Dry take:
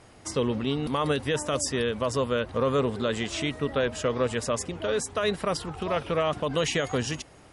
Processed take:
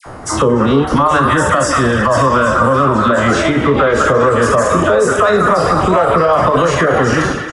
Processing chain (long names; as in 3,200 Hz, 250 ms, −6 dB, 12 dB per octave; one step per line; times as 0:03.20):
peak hold with a decay on every bin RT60 1.13 s
0:00.88–0:03.25: parametric band 440 Hz −14 dB 0.3 octaves
all-pass dispersion lows, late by 62 ms, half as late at 1,400 Hz
downward compressor 10 to 1, threshold −25 dBFS, peak gain reduction 7 dB
high shelf with overshoot 1,900 Hz −10.5 dB, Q 1.5
mains-hum notches 50/100/150/200/250/300/350/400/450/500 Hz
echo through a band-pass that steps 205 ms, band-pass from 1,500 Hz, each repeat 0.7 octaves, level −2.5 dB
reverb reduction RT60 0.76 s
far-end echo of a speakerphone 290 ms, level −13 dB
boost into a limiter +23.5 dB
level −2 dB